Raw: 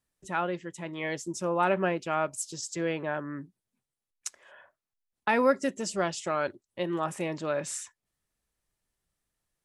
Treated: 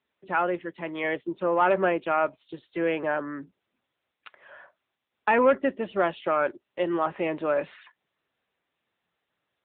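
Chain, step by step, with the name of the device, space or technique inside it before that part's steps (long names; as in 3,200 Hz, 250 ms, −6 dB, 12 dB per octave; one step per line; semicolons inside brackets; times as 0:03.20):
telephone (band-pass filter 270–3,100 Hz; soft clipping −18 dBFS, distortion −17 dB; level +6.5 dB; AMR narrowband 10.2 kbit/s 8,000 Hz)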